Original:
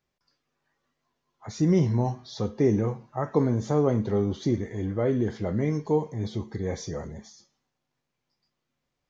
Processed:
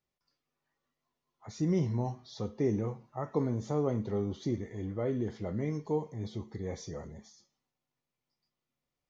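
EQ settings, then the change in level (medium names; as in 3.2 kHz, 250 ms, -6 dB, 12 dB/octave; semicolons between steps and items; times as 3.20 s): band-stop 1.6 kHz, Q 11; -7.5 dB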